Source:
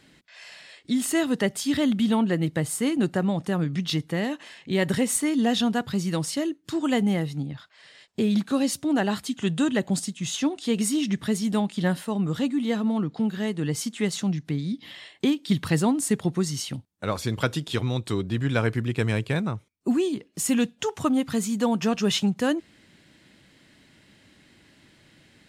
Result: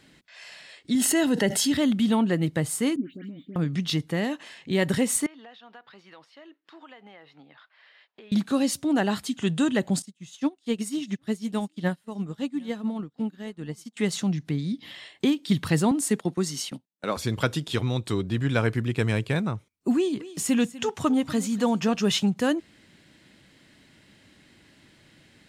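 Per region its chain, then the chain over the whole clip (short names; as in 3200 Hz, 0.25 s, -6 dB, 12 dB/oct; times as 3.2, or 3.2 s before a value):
0.95–1.72 notch comb 1200 Hz + fast leveller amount 70%
2.96–3.56 vowel filter i + dispersion highs, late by 0.118 s, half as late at 2000 Hz + decimation joined by straight lines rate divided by 2×
5.26–8.32 HPF 790 Hz + compressor 4:1, threshold -43 dBFS + air absorption 330 m
10.02–13.97 echo 0.761 s -20 dB + upward expander 2.5:1, over -38 dBFS
15.91–17.17 HPF 180 Hz 24 dB/oct + gate -38 dBFS, range -13 dB
19.95–21.95 high shelf 9300 Hz -6 dB + echo 0.246 s -18 dB + mismatched tape noise reduction encoder only
whole clip: dry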